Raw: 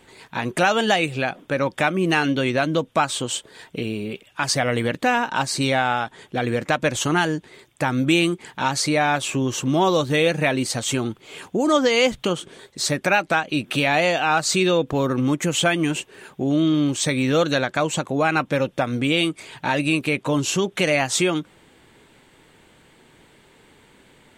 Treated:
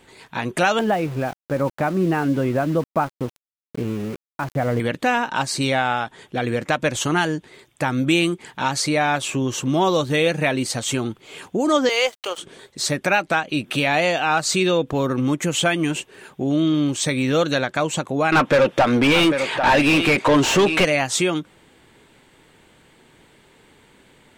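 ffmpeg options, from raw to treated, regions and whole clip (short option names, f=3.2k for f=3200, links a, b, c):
-filter_complex "[0:a]asettb=1/sr,asplit=3[a][b][c];[a]atrim=end=0.794[d];[b]atrim=start=0.79:end=4.8,asetpts=PTS-STARTPTS,afade=t=in:d=0.004:c=qsin,afade=t=out:st=4.006:d=0.004:c=qsin,lowpass=1.2k,lowshelf=f=150:g=6,aeval=exprs='val(0)*gte(abs(val(0)),0.0211)':c=same[e];[c]atrim=start=4.796[f];[d][e]acrossfade=d=0.004:c1=hsin:c2=qsin[g];[g][f]acrossfade=d=0.004:c1=qsin:c2=hsin,asettb=1/sr,asplit=3[h][i][j];[h]atrim=end=11.894[k];[i]atrim=start=11.89:end=12.38,asetpts=PTS-STARTPTS,afade=t=in:d=0.004:c=qsin,afade=t=out:st=0.486:d=0.004:c=qsin,highpass=f=480:w=0.5412,highpass=f=480:w=1.3066,bandreject=f=6.9k:w=25,aeval=exprs='sgn(val(0))*max(abs(val(0))-0.00841,0)':c=same[l];[j]atrim=start=12.376[m];[k][l]acrossfade=d=0.004:c1=hsin:c2=qsin[n];[n][m]acrossfade=d=0.004:c1=qsin:c2=hsin,asettb=1/sr,asplit=3[o][p][q];[o]atrim=end=18.324[r];[p]atrim=start=18.32:end=20.85,asetpts=PTS-STARTPTS,afade=t=in:d=0.004:c=qsin,afade=t=out:st=2.526:d=0.004:c=qsin,aecho=1:1:795:0.188,atrim=end_sample=111573,asplit=2[s][t];[t]highpass=f=720:p=1,volume=25dB,asoftclip=type=tanh:threshold=-6.5dB[u];[s][u]amix=inputs=2:normalize=0,lowpass=f=2k:p=1,volume=-6dB[v];[q]atrim=start=20.846[w];[r][v]acrossfade=d=0.004:c1=hsin:c2=qsin[x];[x][w]acrossfade=d=0.004:c1=qsin:c2=hsin"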